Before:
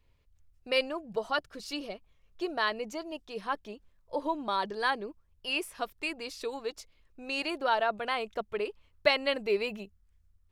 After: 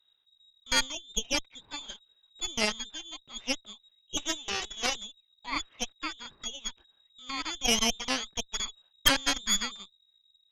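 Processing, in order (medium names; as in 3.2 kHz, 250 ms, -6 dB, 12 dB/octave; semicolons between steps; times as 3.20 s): 4.17–4.96 s: comb filter that takes the minimum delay 2.7 ms; frequency inversion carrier 3.8 kHz; Chebyshev shaper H 7 -24 dB, 8 -12 dB, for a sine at -8.5 dBFS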